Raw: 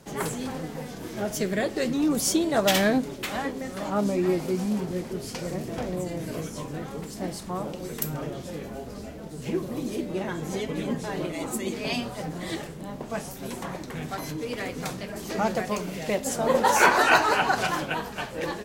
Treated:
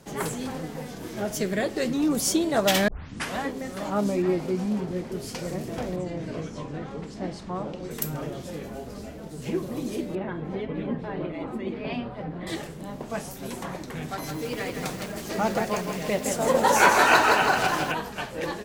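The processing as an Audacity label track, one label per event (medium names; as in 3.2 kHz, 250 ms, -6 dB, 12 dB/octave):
2.880000	2.880000	tape start 0.49 s
4.220000	5.120000	low-pass 3.8 kHz 6 dB/octave
5.960000	7.910000	distance through air 110 m
10.150000	12.470000	distance through air 420 m
14.070000	17.920000	bit-crushed delay 163 ms, feedback 55%, word length 7-bit, level -5 dB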